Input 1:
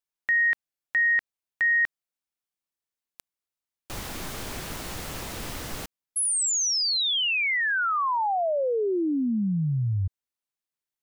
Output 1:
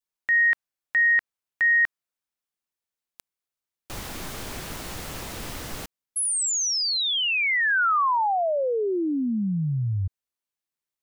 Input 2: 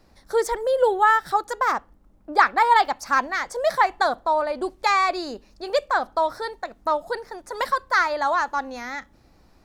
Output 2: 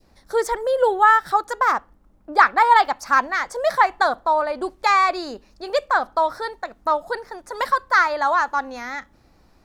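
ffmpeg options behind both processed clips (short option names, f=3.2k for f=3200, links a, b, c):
-af "adynamicequalizer=threshold=0.0224:dfrequency=1300:dqfactor=0.97:tfrequency=1300:tqfactor=0.97:attack=5:release=100:ratio=0.375:range=2:mode=boostabove:tftype=bell"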